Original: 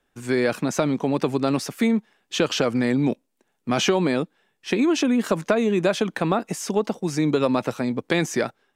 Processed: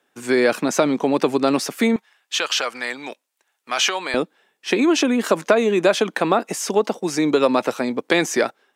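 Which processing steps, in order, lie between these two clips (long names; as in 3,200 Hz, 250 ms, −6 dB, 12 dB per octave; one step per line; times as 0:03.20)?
high-pass filter 260 Hz 12 dB per octave, from 0:01.96 1,000 Hz, from 0:04.14 300 Hz
level +5.5 dB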